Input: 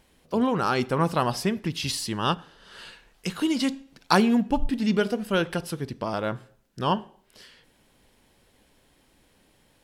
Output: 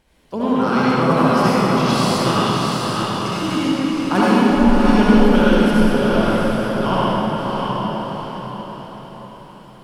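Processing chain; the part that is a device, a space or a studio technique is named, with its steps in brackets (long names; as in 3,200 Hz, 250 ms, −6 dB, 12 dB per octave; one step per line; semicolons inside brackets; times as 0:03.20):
0:03.58–0:04.15: high-frequency loss of the air 440 metres
swimming-pool hall (convolution reverb RT60 3.1 s, pre-delay 58 ms, DRR −8.5 dB; high-shelf EQ 5,700 Hz −5 dB)
feedback delay with all-pass diffusion 682 ms, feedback 42%, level −3 dB
level −1 dB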